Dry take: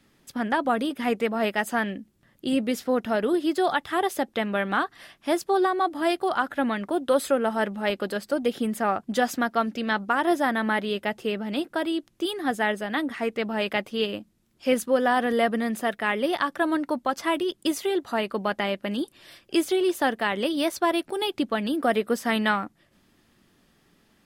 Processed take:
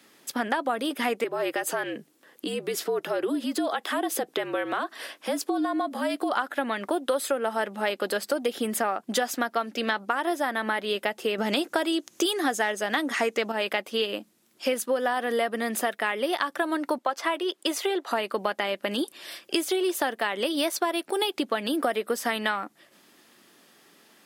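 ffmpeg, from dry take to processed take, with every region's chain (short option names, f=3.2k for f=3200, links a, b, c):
-filter_complex "[0:a]asettb=1/sr,asplit=3[a][b][c];[a]atrim=end=1.244[d];[b]atrim=start=1.24:end=6.32,asetpts=PTS-STARTPTS,afade=t=in:d=0.004:c=qsin,afade=t=out:st=5.076:d=0.004:c=qsin,acompressor=threshold=-33dB:ratio=3:attack=3.2:release=140:knee=1:detection=peak,highpass=f=380:t=q:w=2,afreqshift=-58[e];[c]atrim=start=6.316[f];[d][e]acrossfade=d=0.004:c1=hsin:c2=qsin[g];[g][f]acrossfade=d=0.004:c1=qsin:c2=hsin,asettb=1/sr,asplit=3[h][i][j];[h]atrim=end=11.384[k];[i]atrim=start=11.38:end=13.52,asetpts=PTS-STARTPTS,afade=t=in:d=0.004:c=qsin,afade=t=out:st=2.136:d=0.004:c=qsin,equalizer=f=6.5k:w=2.4:g=9.5,acontrast=84[l];[j]atrim=start=13.516[m];[k][l]acrossfade=d=0.004:c1=hsin:c2=qsin[n];[n][m]acrossfade=d=0.004:c1=qsin:c2=hsin,asettb=1/sr,asplit=3[o][p][q];[o]atrim=end=16.984[r];[p]atrim=start=16.98:end=18.11,asetpts=PTS-STARTPTS,afade=t=in:d=0.004:c=qsin,afade=t=out:st=1.126:d=0.004:c=qsin,highpass=390,aemphasis=mode=reproduction:type=cd[s];[q]atrim=start=18.106[t];[r][s]acrossfade=d=0.004:c1=hsin:c2=qsin[u];[u][t]acrossfade=d=0.004:c1=qsin:c2=hsin,highpass=330,highshelf=f=5.3k:g=4.5,acompressor=threshold=-30dB:ratio=6,volume=7dB"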